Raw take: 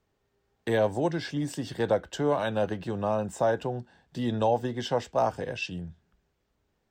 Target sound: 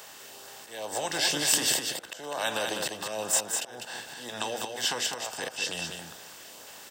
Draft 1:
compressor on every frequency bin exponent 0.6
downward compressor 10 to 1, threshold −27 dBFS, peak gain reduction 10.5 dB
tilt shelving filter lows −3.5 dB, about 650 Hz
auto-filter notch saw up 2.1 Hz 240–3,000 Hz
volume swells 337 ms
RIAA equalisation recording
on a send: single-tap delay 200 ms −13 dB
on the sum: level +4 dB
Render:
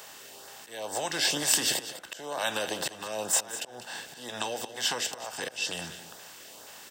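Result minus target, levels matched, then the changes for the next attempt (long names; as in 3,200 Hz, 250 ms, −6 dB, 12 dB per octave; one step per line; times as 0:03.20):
echo-to-direct −8 dB
change: single-tap delay 200 ms −5 dB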